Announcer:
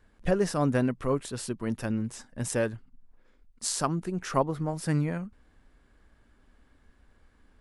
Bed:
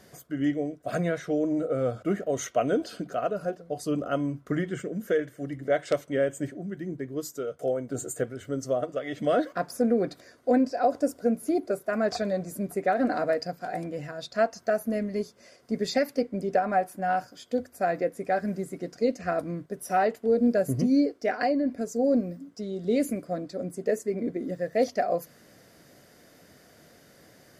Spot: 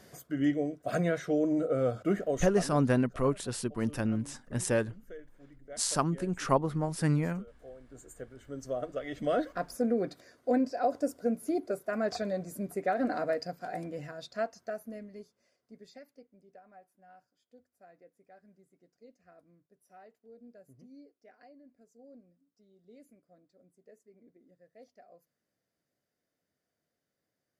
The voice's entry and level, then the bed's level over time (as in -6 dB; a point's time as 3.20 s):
2.15 s, -0.5 dB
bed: 2.27 s -1.5 dB
2.86 s -21.5 dB
7.77 s -21.5 dB
8.92 s -5 dB
14.07 s -5 dB
16.43 s -31 dB